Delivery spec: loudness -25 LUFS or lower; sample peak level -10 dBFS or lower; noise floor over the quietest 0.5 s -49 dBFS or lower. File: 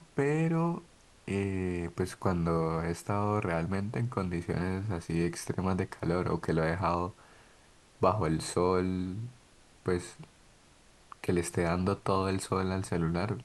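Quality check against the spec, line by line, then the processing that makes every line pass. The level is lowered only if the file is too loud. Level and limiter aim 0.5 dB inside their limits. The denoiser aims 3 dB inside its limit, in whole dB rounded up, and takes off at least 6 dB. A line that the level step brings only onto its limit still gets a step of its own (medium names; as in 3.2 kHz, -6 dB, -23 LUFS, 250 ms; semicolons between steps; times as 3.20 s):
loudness -31.5 LUFS: pass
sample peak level -12.5 dBFS: pass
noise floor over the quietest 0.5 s -60 dBFS: pass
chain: none needed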